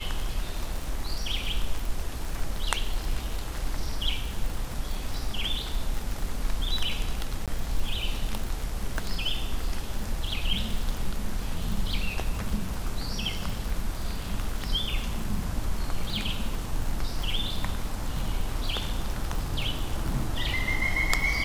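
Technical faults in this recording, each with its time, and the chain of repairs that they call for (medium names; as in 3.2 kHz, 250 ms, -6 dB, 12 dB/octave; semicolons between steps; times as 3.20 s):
crackle 58 per s -30 dBFS
7.46–7.48 s: dropout 17 ms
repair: de-click; interpolate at 7.46 s, 17 ms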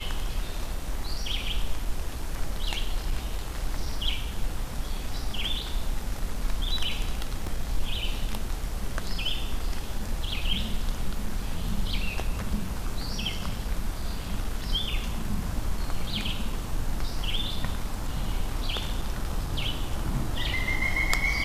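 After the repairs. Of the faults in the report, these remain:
nothing left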